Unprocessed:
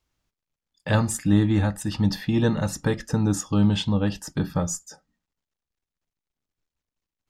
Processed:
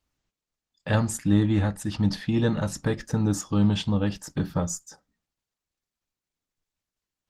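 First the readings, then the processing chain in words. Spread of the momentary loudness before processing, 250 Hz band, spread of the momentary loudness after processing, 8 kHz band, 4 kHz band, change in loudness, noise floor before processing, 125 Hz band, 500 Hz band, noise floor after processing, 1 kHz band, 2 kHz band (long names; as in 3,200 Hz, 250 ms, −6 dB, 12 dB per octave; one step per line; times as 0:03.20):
7 LU, −1.5 dB, 7 LU, −2.5 dB, −3.0 dB, −2.0 dB, below −85 dBFS, −1.5 dB, −2.0 dB, below −85 dBFS, −2.5 dB, −2.5 dB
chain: level −1.5 dB
Opus 16 kbit/s 48,000 Hz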